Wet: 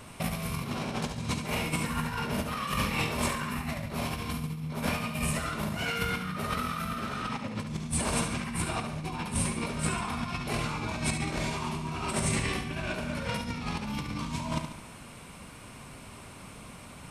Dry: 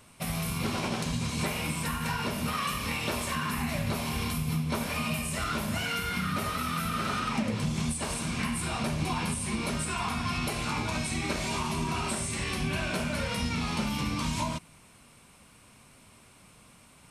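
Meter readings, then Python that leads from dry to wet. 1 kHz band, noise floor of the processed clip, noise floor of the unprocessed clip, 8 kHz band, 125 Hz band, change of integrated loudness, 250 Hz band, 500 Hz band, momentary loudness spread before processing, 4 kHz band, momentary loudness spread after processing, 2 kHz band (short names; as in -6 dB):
-1.0 dB, -47 dBFS, -56 dBFS, -0.5 dB, -1.0 dB, -1.5 dB, -1.5 dB, 0.0 dB, 1 LU, -2.5 dB, 17 LU, -1.0 dB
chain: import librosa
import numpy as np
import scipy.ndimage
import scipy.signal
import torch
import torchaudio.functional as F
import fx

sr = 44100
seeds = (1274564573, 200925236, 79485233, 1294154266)

p1 = fx.high_shelf(x, sr, hz=2900.0, db=-6.0)
p2 = fx.over_compress(p1, sr, threshold_db=-36.0, ratio=-0.5)
p3 = p2 + fx.echo_feedback(p2, sr, ms=71, feedback_pct=49, wet_db=-8, dry=0)
y = p3 * librosa.db_to_amplitude(4.5)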